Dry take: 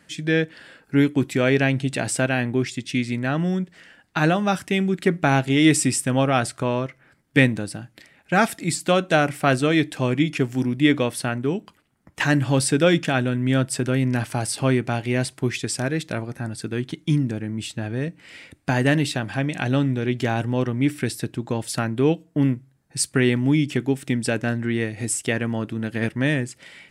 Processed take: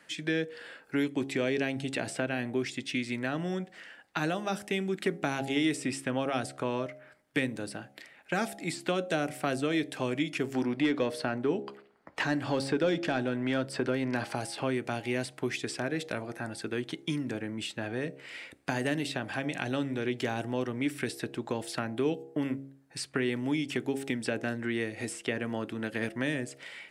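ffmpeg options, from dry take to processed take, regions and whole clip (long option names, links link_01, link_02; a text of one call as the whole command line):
ffmpeg -i in.wav -filter_complex "[0:a]asettb=1/sr,asplit=3[link_01][link_02][link_03];[link_01]atrim=end=1.034[link_04];[link_02]atrim=start=1.03:end=1.64,asetpts=PTS-STARTPTS,afade=type=in:duration=0.004:curve=qsin,afade=type=out:start_time=0.606:duration=0.004:curve=qsin,lowpass=9200,equalizer=frequency=1400:width=5.6:gain=-5.5[link_05];[link_03]atrim=start=1.636[link_06];[link_04][link_05]acrossfade=duration=0.004:curve1=hsin:curve2=qsin[link_07];[link_07][link_06]acrossfade=duration=0.004:curve1=qsin:curve2=hsin,asettb=1/sr,asplit=3[link_08][link_09][link_10];[link_08]atrim=end=10.534[link_11];[link_09]atrim=start=10.53:end=14.35,asetpts=PTS-STARTPTS,afade=type=in:duration=0.004:curve=qsin,afade=type=out:start_time=3.816:duration=0.004:curve=qsin,equalizer=frequency=4500:width=3.6:gain=7,acontrast=78,asplit=2[link_12][link_13];[link_13]highpass=frequency=720:poles=1,volume=8dB,asoftclip=type=tanh:threshold=-2dB[link_14];[link_12][link_14]amix=inputs=2:normalize=0,lowpass=frequency=1000:poles=1,volume=-6dB[link_15];[link_10]atrim=start=14.346[link_16];[link_11][link_15]acrossfade=duration=0.004:curve1=hsin:curve2=qsin[link_17];[link_17][link_16]acrossfade=duration=0.004:curve1=qsin:curve2=hsin,bandreject=frequency=68.16:width_type=h:width=4,bandreject=frequency=136.32:width_type=h:width=4,bandreject=frequency=204.48:width_type=h:width=4,bandreject=frequency=272.64:width_type=h:width=4,bandreject=frequency=340.8:width_type=h:width=4,bandreject=frequency=408.96:width_type=h:width=4,bandreject=frequency=477.12:width_type=h:width=4,bandreject=frequency=545.28:width_type=h:width=4,bandreject=frequency=613.44:width_type=h:width=4,bandreject=frequency=681.6:width_type=h:width=4,bandreject=frequency=749.76:width_type=h:width=4,bandreject=frequency=817.92:width_type=h:width=4,acrossover=split=370|4300[link_18][link_19][link_20];[link_18]acompressor=threshold=-22dB:ratio=4[link_21];[link_19]acompressor=threshold=-33dB:ratio=4[link_22];[link_20]acompressor=threshold=-41dB:ratio=4[link_23];[link_21][link_22][link_23]amix=inputs=3:normalize=0,bass=frequency=250:gain=-14,treble=frequency=4000:gain=-4" out.wav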